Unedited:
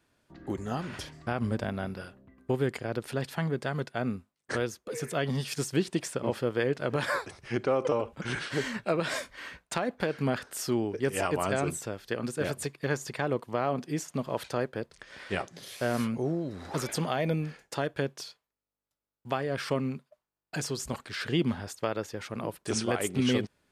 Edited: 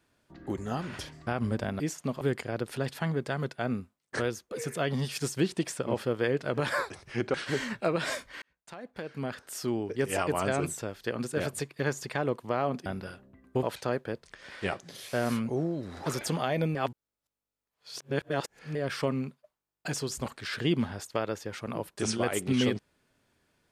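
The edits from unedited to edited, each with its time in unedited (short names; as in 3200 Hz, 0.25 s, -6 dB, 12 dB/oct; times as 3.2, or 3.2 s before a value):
1.8–2.57 swap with 13.9–14.31
7.7–8.38 cut
9.46–11.15 fade in
17.43–19.43 reverse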